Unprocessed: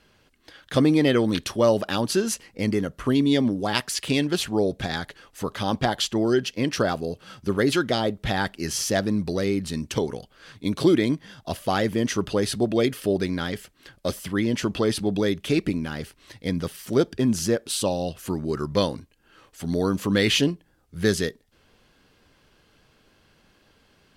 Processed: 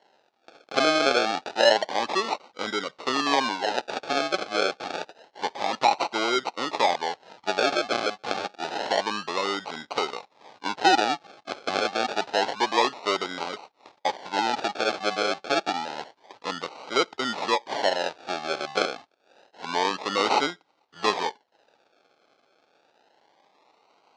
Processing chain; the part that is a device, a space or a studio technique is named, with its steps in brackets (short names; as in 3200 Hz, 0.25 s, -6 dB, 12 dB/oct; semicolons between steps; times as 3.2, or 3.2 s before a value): circuit-bent sampling toy (decimation with a swept rate 36×, swing 60% 0.28 Hz; speaker cabinet 600–5700 Hz, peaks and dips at 840 Hz +7 dB, 1800 Hz -3 dB, 4100 Hz +4 dB); gain +2.5 dB